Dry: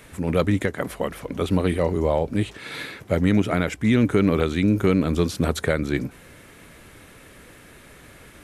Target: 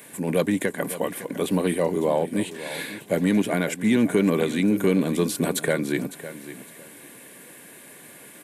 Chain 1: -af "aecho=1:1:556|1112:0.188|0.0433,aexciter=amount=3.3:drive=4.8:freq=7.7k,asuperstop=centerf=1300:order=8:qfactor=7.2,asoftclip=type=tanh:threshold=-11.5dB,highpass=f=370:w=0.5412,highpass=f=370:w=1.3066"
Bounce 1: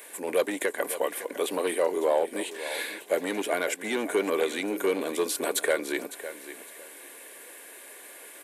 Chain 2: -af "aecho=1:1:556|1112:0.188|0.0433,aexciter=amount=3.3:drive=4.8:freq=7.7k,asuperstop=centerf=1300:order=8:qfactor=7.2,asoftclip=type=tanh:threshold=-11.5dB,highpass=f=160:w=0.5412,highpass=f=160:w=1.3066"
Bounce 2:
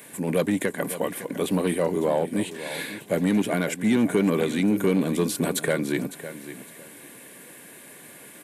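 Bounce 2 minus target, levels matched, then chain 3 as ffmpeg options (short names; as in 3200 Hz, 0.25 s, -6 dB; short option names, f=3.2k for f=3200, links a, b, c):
soft clip: distortion +10 dB
-af "aecho=1:1:556|1112:0.188|0.0433,aexciter=amount=3.3:drive=4.8:freq=7.7k,asuperstop=centerf=1300:order=8:qfactor=7.2,asoftclip=type=tanh:threshold=-5.5dB,highpass=f=160:w=0.5412,highpass=f=160:w=1.3066"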